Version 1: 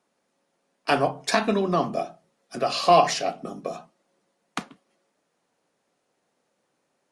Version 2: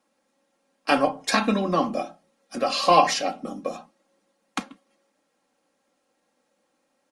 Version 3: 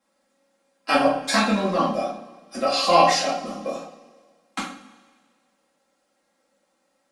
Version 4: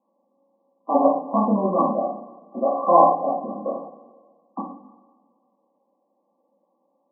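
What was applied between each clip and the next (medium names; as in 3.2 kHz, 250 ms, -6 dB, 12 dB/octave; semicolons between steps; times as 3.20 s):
comb 3.7 ms, depth 69%
two-slope reverb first 0.42 s, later 1.7 s, from -18 dB, DRR -7 dB; trim -5.5 dB
brick-wall FIR band-pass 170–1200 Hz; trim +2 dB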